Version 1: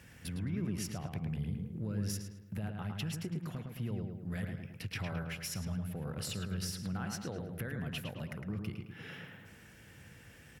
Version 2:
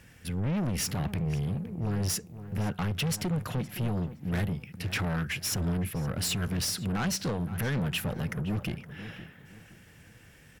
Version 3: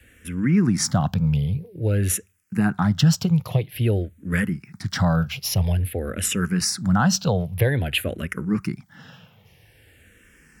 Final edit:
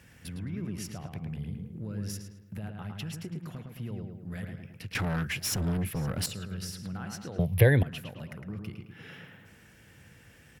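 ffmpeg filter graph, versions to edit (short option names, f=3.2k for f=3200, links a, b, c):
-filter_complex "[0:a]asplit=3[a][b][c];[a]atrim=end=4.952[d];[1:a]atrim=start=4.948:end=6.262[e];[b]atrim=start=6.258:end=7.392[f];[2:a]atrim=start=7.388:end=7.832[g];[c]atrim=start=7.828[h];[d][e]acrossfade=d=0.004:c1=hsin:c2=hsin[i];[i][f]acrossfade=d=0.004:c1=hsin:c2=hsin[j];[j][g]acrossfade=d=0.004:c1=hsin:c2=hsin[k];[k][h]acrossfade=d=0.004:c1=hsin:c2=hsin"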